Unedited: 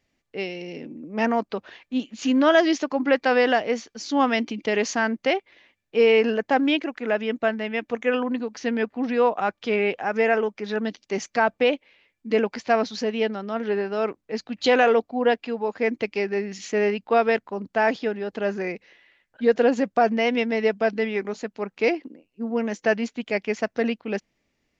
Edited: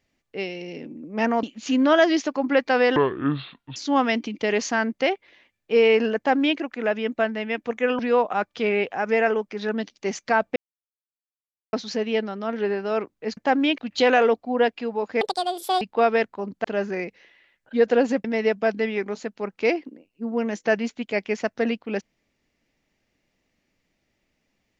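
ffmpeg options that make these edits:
-filter_complex "[0:a]asplit=13[a][b][c][d][e][f][g][h][i][j][k][l][m];[a]atrim=end=1.432[n];[b]atrim=start=1.988:end=3.524[o];[c]atrim=start=3.52:end=4,asetpts=PTS-STARTPTS,asetrate=26460,aresample=44100[p];[d]atrim=start=3.996:end=8.232[q];[e]atrim=start=9.058:end=11.63,asetpts=PTS-STARTPTS,afade=t=out:st=2.568:d=0.004:c=hsin[r];[f]atrim=start=11.63:end=12.8,asetpts=PTS-STARTPTS,volume=0[s];[g]atrim=start=12.8:end=14.442,asetpts=PTS-STARTPTS,afade=t=in:d=0.004:c=hsin[t];[h]atrim=start=6.408:end=6.822[u];[i]atrim=start=14.438:end=15.874[v];[j]atrim=start=15.87:end=16.95,asetpts=PTS-STARTPTS,asetrate=78939,aresample=44100[w];[k]atrim=start=16.946:end=17.782[x];[l]atrim=start=18.318:end=19.922[y];[m]atrim=start=20.428[z];[n][o]acrossfade=d=0.004:c1=hsin:c2=hsin[aa];[aa][p]acrossfade=d=0.004:c1=hsin:c2=hsin[ab];[ab][q]acrossfade=d=0.004:c1=hsin:c2=hsin[ac];[r][s][t]concat=n=3:v=0:a=1[ad];[ac][ad]acrossfade=d=0.004:c1=hsin:c2=hsin[ae];[ae][u]acrossfade=d=0.004:c1=hsin:c2=hsin[af];[af][v]acrossfade=d=0.004:c1=hsin:c2=hsin[ag];[ag][w]acrossfade=d=0.004:c1=hsin:c2=hsin[ah];[ah][x]acrossfade=d=0.004:c1=hsin:c2=hsin[ai];[ai][y]acrossfade=d=0.004:c1=hsin:c2=hsin[aj];[aj][z]acrossfade=d=0.004:c1=hsin:c2=hsin"

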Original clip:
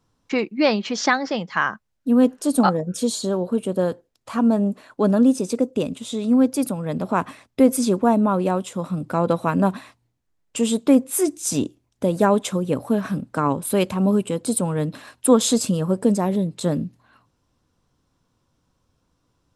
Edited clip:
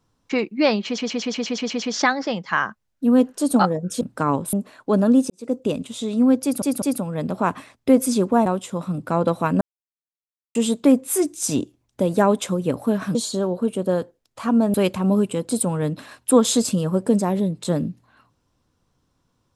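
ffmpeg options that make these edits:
-filter_complex "[0:a]asplit=19[a][b][c][d][e][f][g][h][i][j][k][l][m][n][o][p][q][r][s];[a]atrim=end=0.982[t];[b]atrim=start=0.858:end=0.982[u];[c]atrim=start=0.858:end=0.982[v];[d]atrim=start=0.858:end=0.982[w];[e]atrim=start=0.858:end=0.982[x];[f]atrim=start=0.858:end=0.982[y];[g]atrim=start=0.858:end=0.982[z];[h]atrim=start=0.858:end=0.982[aa];[i]atrim=start=0.858:end=3.052[ab];[j]atrim=start=13.178:end=13.702[ac];[k]atrim=start=4.638:end=5.41,asetpts=PTS-STARTPTS,afade=t=out:st=0.768:d=0.004:c=hsin[ad];[l]atrim=start=5.41:end=6.732,asetpts=PTS-STARTPTS,afade=t=in:d=0.25:c=qua[ae];[m]atrim=start=6.528:end=6.732[af];[n]atrim=start=6.528:end=8.172[ag];[o]atrim=start=8.488:end=9.64,asetpts=PTS-STARTPTS,afade=t=out:st=1.148:d=0.004:c=hsin[ah];[p]atrim=start=9.64:end=10.58,asetpts=PTS-STARTPTS,volume=0[ai];[q]atrim=start=10.58:end=13.182,asetpts=PTS-STARTPTS,afade=t=in:d=0.004:c=hsin[aj];[r]atrim=start=3.048:end=4.642[ak];[s]atrim=start=13.698[al];[t][u]acrossfade=d=0.004:c1=hsin:c2=hsin[am];[am][v]acrossfade=d=0.004:c1=hsin:c2=hsin[an];[an][w]acrossfade=d=0.004:c1=hsin:c2=hsin[ao];[ao][x]acrossfade=d=0.004:c1=hsin:c2=hsin[ap];[ap][y]acrossfade=d=0.004:c1=hsin:c2=hsin[aq];[aq][z]acrossfade=d=0.004:c1=hsin:c2=hsin[ar];[ar][aa]acrossfade=d=0.004:c1=hsin:c2=hsin[as];[as][ab]acrossfade=d=0.004:c1=hsin:c2=hsin[at];[at][ac]acrossfade=d=0.004:c1=hsin:c2=hsin[au];[ad][ae]concat=n=2:v=0:a=1[av];[au][av]acrossfade=d=0.004:c1=hsin:c2=hsin[aw];[aw][af]acrossfade=d=0.004:c1=hsin:c2=hsin[ax];[ax][ag]acrossfade=d=0.004:c1=hsin:c2=hsin[ay];[ah][ai][aj]concat=n=3:v=0:a=1[az];[ay][az]acrossfade=d=0.004:c1=hsin:c2=hsin[ba];[ba][ak]acrossfade=d=0.004:c1=hsin:c2=hsin[bb];[bb][al]acrossfade=d=0.004:c1=hsin:c2=hsin"

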